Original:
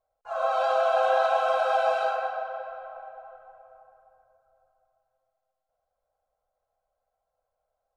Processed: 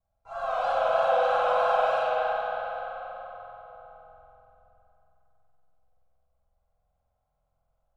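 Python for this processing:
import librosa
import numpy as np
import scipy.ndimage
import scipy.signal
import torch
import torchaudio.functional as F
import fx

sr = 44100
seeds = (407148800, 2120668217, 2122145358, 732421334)

p1 = fx.low_shelf_res(x, sr, hz=280.0, db=13.5, q=1.5)
p2 = fx.notch(p1, sr, hz=1700.0, q=11.0)
p3 = fx.vibrato(p2, sr, rate_hz=3.2, depth_cents=89.0)
p4 = p3 + fx.echo_feedback(p3, sr, ms=383, feedback_pct=32, wet_db=-13.0, dry=0)
p5 = fx.rev_spring(p4, sr, rt60_s=2.8, pass_ms=(46,), chirp_ms=60, drr_db=-5.0)
y = F.gain(torch.from_numpy(p5), -5.5).numpy()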